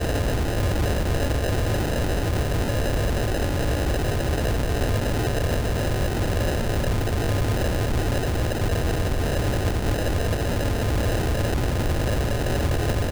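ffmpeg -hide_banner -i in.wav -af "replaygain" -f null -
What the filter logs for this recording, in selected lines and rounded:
track_gain = +10.5 dB
track_peak = 0.113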